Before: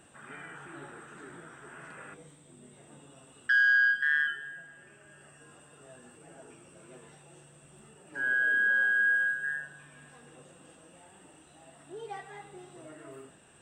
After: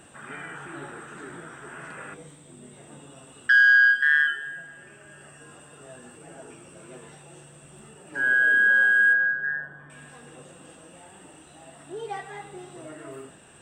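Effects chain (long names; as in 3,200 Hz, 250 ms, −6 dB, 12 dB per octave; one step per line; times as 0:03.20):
0:03.61–0:04.47: parametric band 140 Hz −7.5 dB 1.4 octaves
0:09.13–0:09.90: Savitzky-Golay smoothing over 41 samples
level +7 dB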